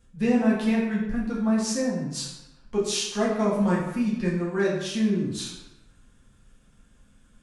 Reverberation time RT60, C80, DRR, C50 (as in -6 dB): 0.95 s, 5.5 dB, -7.0 dB, 2.5 dB